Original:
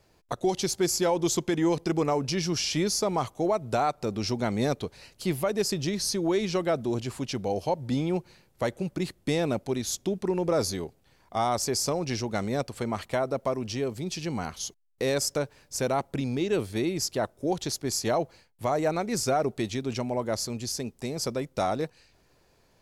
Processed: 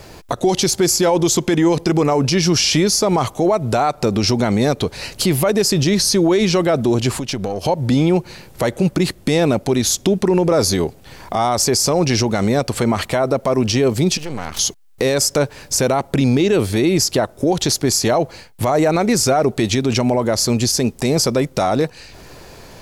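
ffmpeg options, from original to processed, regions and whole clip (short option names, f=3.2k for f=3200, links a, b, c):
-filter_complex "[0:a]asettb=1/sr,asplit=3[a][b][c];[a]atrim=end=7.174[d];[b]atrim=start=7.17:end=7.65,asetpts=PTS-STARTPTS,afade=t=in:d=0.004:c=qsin,afade=t=out:st=0.476:d=0.004:c=qsin,aeval=exprs='if(lt(val(0),0),0.708*val(0),val(0))':c=same,acompressor=threshold=-41dB:ratio=5:attack=3.2:release=140:knee=1:detection=peak[e];[c]atrim=start=7.646[f];[d][e]acrossfade=d=0.004:c1=hsin:c2=qsin[g];[g][f]acrossfade=d=0.004:c1=qsin:c2=hsin,asettb=1/sr,asplit=3[h][i][j];[h]atrim=end=14.174[k];[i]atrim=start=14.17:end=14.59,asetpts=PTS-STARTPTS,afade=t=in:d=0.004:c=qsin,afade=t=out:st=0.416:d=0.004:c=qsin,acompressor=threshold=-40dB:ratio=10:attack=3.2:release=140:knee=1:detection=peak,aeval=exprs='max(val(0),0)':c=same[l];[j]atrim=start=14.586[m];[k][l]acrossfade=d=0.004:c1=hsin:c2=qsin[n];[n][m]acrossfade=d=0.004:c1=qsin:c2=hsin,acompressor=threshold=-49dB:ratio=1.5,alimiter=level_in=31dB:limit=-1dB:release=50:level=0:latency=1,volume=-6.5dB"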